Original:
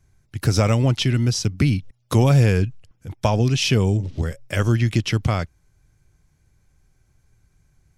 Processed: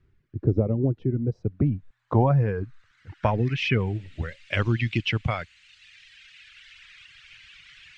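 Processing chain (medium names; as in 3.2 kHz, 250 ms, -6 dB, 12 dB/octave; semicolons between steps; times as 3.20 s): band noise 1.5–8.6 kHz -43 dBFS; reverb removal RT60 1.9 s; low-pass sweep 390 Hz -> 2.7 kHz, 0.78–4.03 s; trim -4 dB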